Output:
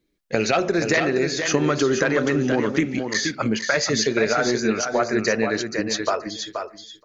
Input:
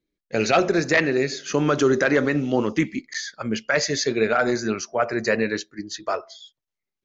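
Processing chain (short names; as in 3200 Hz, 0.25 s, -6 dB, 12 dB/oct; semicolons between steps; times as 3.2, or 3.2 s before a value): compressor 3:1, threshold -29 dBFS, peak gain reduction 11.5 dB; on a send: feedback echo 0.477 s, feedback 15%, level -6.5 dB; on the sum: gain +8.5 dB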